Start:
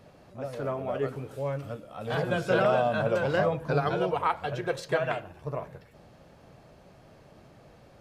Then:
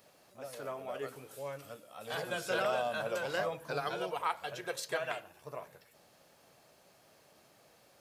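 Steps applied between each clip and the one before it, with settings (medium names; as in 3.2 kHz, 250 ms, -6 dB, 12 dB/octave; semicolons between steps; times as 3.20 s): RIAA curve recording; trim -7 dB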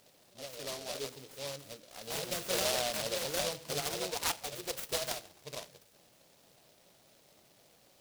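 delay time shaken by noise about 3.9 kHz, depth 0.2 ms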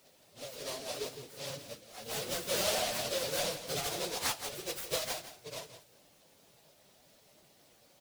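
phase randomisation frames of 50 ms; delay 167 ms -12.5 dB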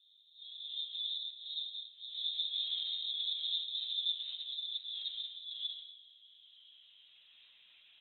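transient shaper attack -8 dB, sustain +11 dB; low-pass sweep 310 Hz -> 1.3 kHz, 5.12–7.40 s; frequency inversion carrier 3.9 kHz; trim +2 dB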